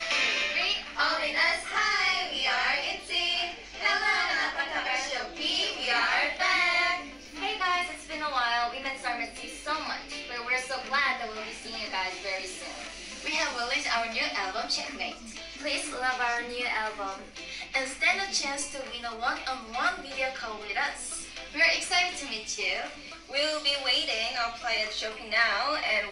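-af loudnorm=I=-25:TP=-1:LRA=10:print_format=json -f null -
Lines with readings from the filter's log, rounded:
"input_i" : "-27.9",
"input_tp" : "-10.9",
"input_lra" : "4.7",
"input_thresh" : "-38.1",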